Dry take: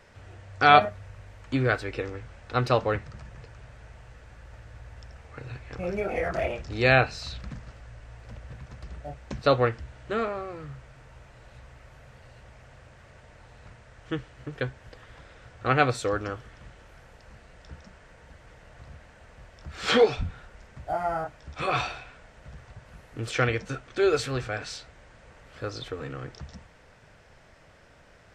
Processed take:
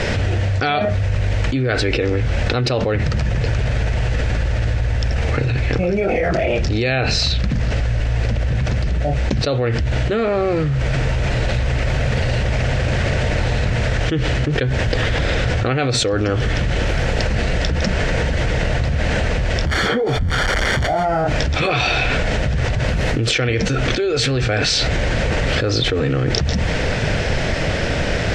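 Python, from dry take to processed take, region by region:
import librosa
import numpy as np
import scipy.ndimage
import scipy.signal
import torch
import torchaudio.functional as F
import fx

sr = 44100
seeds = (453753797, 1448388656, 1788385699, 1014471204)

y = fx.chain(x, sr, fx.crossing_spikes(level_db=-16.5),
    fx.savgol(points=41), at=(19.67, 21.05))
y = scipy.signal.sosfilt(scipy.signal.butter(2, 5500.0, 'lowpass', fs=sr, output='sos'), y)
y = fx.peak_eq(y, sr, hz=1100.0, db=-10.5, octaves=1.1)
y = fx.env_flatten(y, sr, amount_pct=100)
y = y * librosa.db_to_amplitude(-2.0)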